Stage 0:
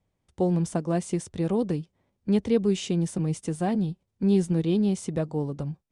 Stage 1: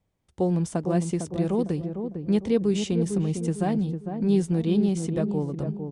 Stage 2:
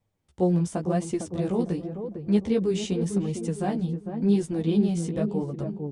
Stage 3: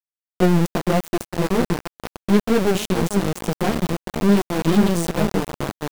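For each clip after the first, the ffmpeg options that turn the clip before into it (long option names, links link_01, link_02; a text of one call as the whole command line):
ffmpeg -i in.wav -filter_complex "[0:a]asplit=2[link_01][link_02];[link_02]adelay=453,lowpass=frequency=820:poles=1,volume=-6dB,asplit=2[link_03][link_04];[link_04]adelay=453,lowpass=frequency=820:poles=1,volume=0.43,asplit=2[link_05][link_06];[link_06]adelay=453,lowpass=frequency=820:poles=1,volume=0.43,asplit=2[link_07][link_08];[link_08]adelay=453,lowpass=frequency=820:poles=1,volume=0.43,asplit=2[link_09][link_10];[link_10]adelay=453,lowpass=frequency=820:poles=1,volume=0.43[link_11];[link_01][link_03][link_05][link_07][link_09][link_11]amix=inputs=6:normalize=0" out.wav
ffmpeg -i in.wav -af "flanger=delay=8.4:depth=9.1:regen=0:speed=0.9:shape=sinusoidal,volume=2dB" out.wav
ffmpeg -i in.wav -af "aeval=exprs='val(0)*gte(abs(val(0)),0.0447)':channel_layout=same,aeval=exprs='0.282*(cos(1*acos(clip(val(0)/0.282,-1,1)))-cos(1*PI/2))+0.0316*(cos(8*acos(clip(val(0)/0.282,-1,1)))-cos(8*PI/2))':channel_layout=same,volume=5.5dB" out.wav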